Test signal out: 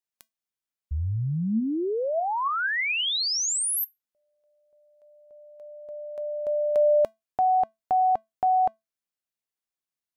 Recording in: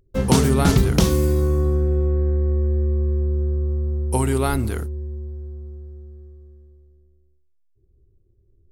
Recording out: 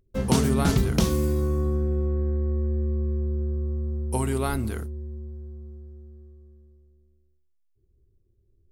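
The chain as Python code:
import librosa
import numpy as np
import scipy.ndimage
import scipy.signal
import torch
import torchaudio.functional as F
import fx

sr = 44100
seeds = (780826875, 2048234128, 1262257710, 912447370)

y = fx.comb_fb(x, sr, f0_hz=220.0, decay_s=0.19, harmonics='odd', damping=0.0, mix_pct=50)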